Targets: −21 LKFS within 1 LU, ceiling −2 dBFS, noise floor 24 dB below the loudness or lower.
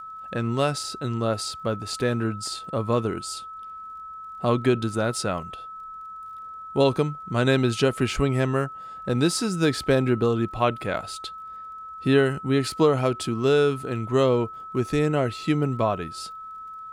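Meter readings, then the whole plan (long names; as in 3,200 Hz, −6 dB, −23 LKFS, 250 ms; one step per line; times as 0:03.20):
crackle rate 29 per second; interfering tone 1,300 Hz; level of the tone −36 dBFS; integrated loudness −24.5 LKFS; sample peak −7.0 dBFS; target loudness −21.0 LKFS
→ click removal
notch filter 1,300 Hz, Q 30
level +3.5 dB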